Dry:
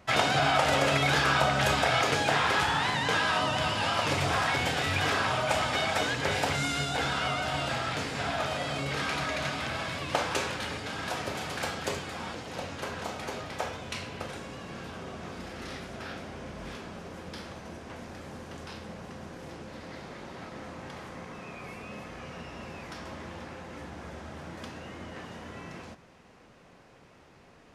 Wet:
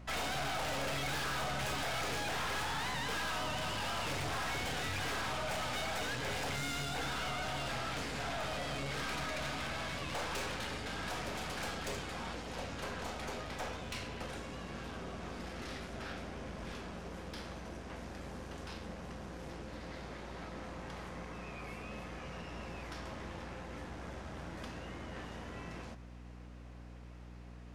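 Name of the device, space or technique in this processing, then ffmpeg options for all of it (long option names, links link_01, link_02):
valve amplifier with mains hum: -af "aeval=exprs='(tanh(50.1*val(0)+0.45)-tanh(0.45))/50.1':channel_layout=same,aeval=exprs='val(0)+0.00398*(sin(2*PI*60*n/s)+sin(2*PI*2*60*n/s)/2+sin(2*PI*3*60*n/s)/3+sin(2*PI*4*60*n/s)/4+sin(2*PI*5*60*n/s)/5)':channel_layout=same,volume=-1.5dB"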